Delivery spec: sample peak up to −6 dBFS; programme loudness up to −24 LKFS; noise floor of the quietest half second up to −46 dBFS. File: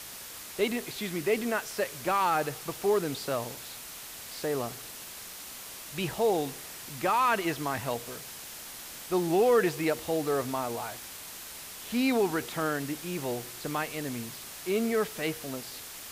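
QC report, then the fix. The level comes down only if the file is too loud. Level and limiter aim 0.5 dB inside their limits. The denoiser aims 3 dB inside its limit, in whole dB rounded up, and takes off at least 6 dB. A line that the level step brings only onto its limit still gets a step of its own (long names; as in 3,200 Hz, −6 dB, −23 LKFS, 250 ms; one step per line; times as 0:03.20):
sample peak −13.5 dBFS: in spec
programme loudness −31.0 LKFS: in spec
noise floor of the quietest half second −44 dBFS: out of spec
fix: broadband denoise 6 dB, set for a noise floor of −44 dBFS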